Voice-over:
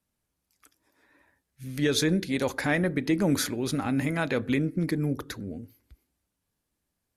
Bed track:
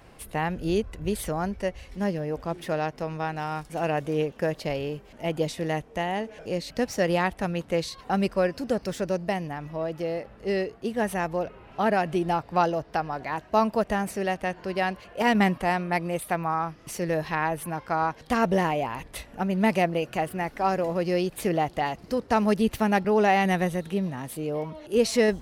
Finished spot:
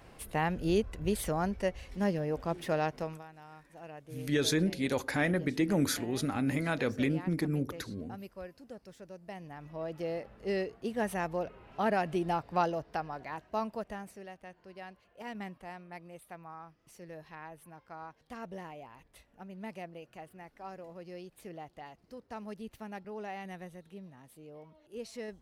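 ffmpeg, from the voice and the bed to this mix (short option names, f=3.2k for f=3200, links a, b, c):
-filter_complex "[0:a]adelay=2500,volume=-4dB[a];[1:a]volume=12dB,afade=t=out:st=2.97:d=0.26:silence=0.125893,afade=t=in:st=9.2:d=0.89:silence=0.177828,afade=t=out:st=12.51:d=1.78:silence=0.188365[b];[a][b]amix=inputs=2:normalize=0"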